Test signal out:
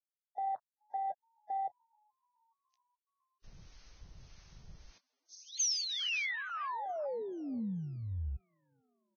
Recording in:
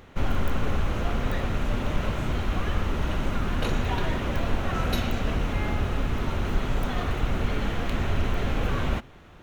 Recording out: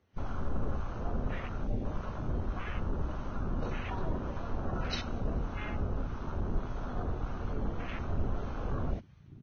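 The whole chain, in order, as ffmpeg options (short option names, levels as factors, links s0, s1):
-filter_complex "[0:a]aemphasis=mode=production:type=50kf,asplit=6[s0][s1][s2][s3][s4][s5];[s1]adelay=426,afreqshift=67,volume=0.0794[s6];[s2]adelay=852,afreqshift=134,volume=0.0501[s7];[s3]adelay=1278,afreqshift=201,volume=0.0316[s8];[s4]adelay=1704,afreqshift=268,volume=0.02[s9];[s5]adelay=2130,afreqshift=335,volume=0.0124[s10];[s0][s6][s7][s8][s9][s10]amix=inputs=6:normalize=0,acrossover=split=860[s11][s12];[s11]aeval=exprs='val(0)*(1-0.5/2+0.5/2*cos(2*PI*1.7*n/s))':c=same[s13];[s12]aeval=exprs='val(0)*(1-0.5/2-0.5/2*cos(2*PI*1.7*n/s))':c=same[s14];[s13][s14]amix=inputs=2:normalize=0,acrossover=split=360[s15][s16];[s16]asoftclip=type=tanh:threshold=0.2[s17];[s15][s17]amix=inputs=2:normalize=0,afwtdn=0.0224,volume=0.501" -ar 16000 -c:a libvorbis -b:a 16k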